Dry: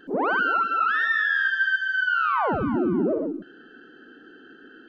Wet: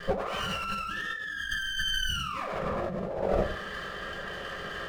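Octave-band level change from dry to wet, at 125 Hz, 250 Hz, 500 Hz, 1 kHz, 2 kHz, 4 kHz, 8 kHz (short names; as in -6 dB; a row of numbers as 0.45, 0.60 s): -0.5 dB, -11.5 dB, -3.0 dB, -10.0 dB, -11.5 dB, +6.5 dB, n/a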